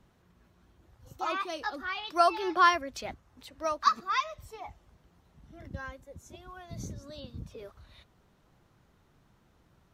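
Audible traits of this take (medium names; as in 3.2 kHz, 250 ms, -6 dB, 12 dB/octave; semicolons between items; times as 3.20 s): noise floor -66 dBFS; spectral tilt -3.5 dB/octave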